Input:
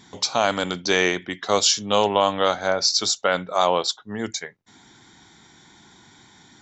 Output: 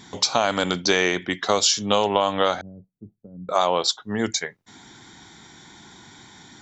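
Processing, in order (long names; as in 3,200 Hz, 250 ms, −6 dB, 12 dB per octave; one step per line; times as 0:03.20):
downward compressor 5 to 1, threshold −20 dBFS, peak gain reduction 7 dB
0:02.61–0:03.49: transistor ladder low-pass 250 Hz, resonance 20%
level +4.5 dB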